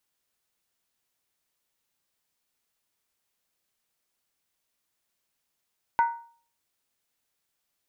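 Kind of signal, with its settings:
struck skin, lowest mode 932 Hz, decay 0.46 s, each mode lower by 10 dB, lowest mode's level −16 dB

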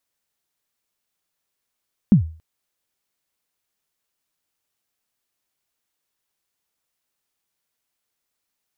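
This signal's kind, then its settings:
synth kick length 0.28 s, from 230 Hz, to 80 Hz, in 109 ms, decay 0.39 s, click off, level −5 dB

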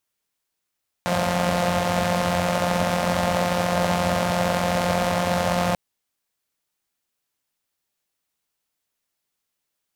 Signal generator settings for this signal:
pulse-train model of a four-cylinder engine, steady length 4.69 s, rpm 5,300, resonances 100/190/580 Hz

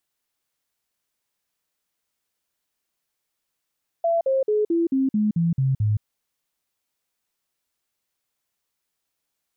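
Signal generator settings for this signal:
stepped sweep 672 Hz down, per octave 3, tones 9, 0.17 s, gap 0.05 s −17.5 dBFS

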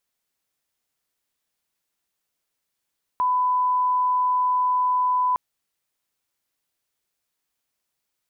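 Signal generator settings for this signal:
line-up tone −18 dBFS 2.16 s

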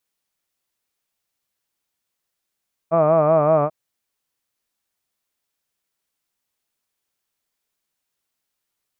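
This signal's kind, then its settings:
vowel by formant synthesis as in hud, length 0.79 s, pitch 160 Hz, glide −1 semitone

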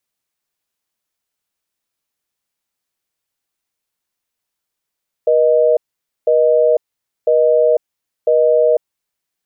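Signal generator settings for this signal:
call progress tone busy tone, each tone −12 dBFS 3.60 s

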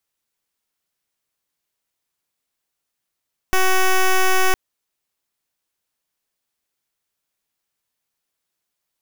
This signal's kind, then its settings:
pulse wave 375 Hz, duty 9% −14.5 dBFS 1.01 s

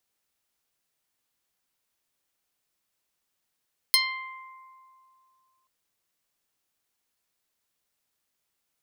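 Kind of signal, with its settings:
Karplus-Strong string C6, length 1.73 s, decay 2.60 s, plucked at 0.15, medium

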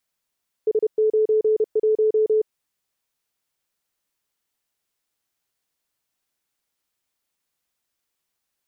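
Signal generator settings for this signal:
Morse code "S91" 31 words per minute 433 Hz −15 dBFS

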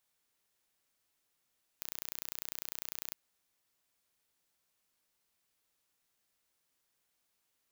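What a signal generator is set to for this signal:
impulse train 30 per second, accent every 0, −12 dBFS 1.31 s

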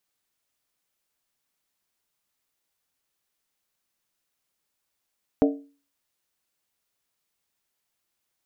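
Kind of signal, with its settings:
struck skin, lowest mode 282 Hz, decay 0.38 s, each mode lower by 4 dB, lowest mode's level −14 dB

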